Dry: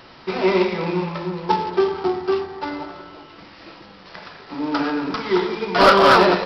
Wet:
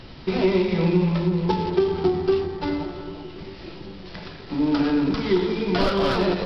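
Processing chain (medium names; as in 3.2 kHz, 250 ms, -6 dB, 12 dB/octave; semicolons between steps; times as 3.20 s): FFT filter 150 Hz 0 dB, 1.2 kHz -5 dB, 3.4 kHz +8 dB; on a send: filtered feedback delay 394 ms, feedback 67%, low-pass 2 kHz, level -18 dB; on the sum: compression 6:1, threshold -20 dBFS, peak gain reduction 11 dB; tilt EQ -3.5 dB/octave; endings held to a fixed fall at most 130 dB/s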